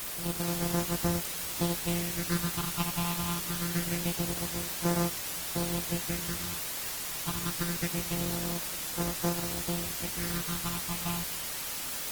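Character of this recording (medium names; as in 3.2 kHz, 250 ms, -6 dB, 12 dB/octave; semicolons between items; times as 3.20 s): a buzz of ramps at a fixed pitch in blocks of 256 samples; phasing stages 6, 0.25 Hz, lowest notch 460–3300 Hz; a quantiser's noise floor 6-bit, dither triangular; Opus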